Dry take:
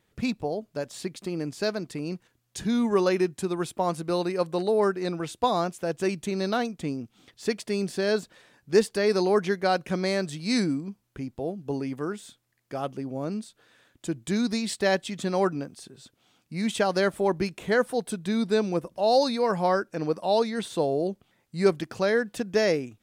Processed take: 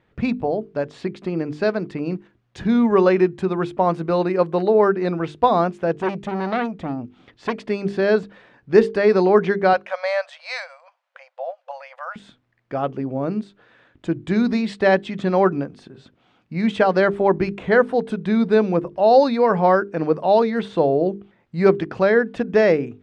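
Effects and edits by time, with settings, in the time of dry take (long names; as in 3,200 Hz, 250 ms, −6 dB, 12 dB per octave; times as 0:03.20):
0:05.94–0:07.69: saturating transformer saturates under 1,500 Hz
0:09.73–0:12.16: linear-phase brick-wall high-pass 510 Hz
whole clip: low-pass filter 2,300 Hz 12 dB per octave; mains-hum notches 50/100/150/200/250/300/350/400/450 Hz; level +8 dB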